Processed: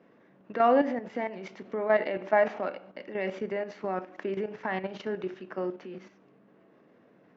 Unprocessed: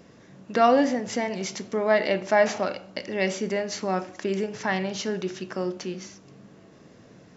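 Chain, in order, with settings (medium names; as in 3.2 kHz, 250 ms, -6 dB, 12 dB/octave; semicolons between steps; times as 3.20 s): three-band isolator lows -19 dB, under 190 Hz, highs -20 dB, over 2.9 kHz; level held to a coarse grid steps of 10 dB; distance through air 78 m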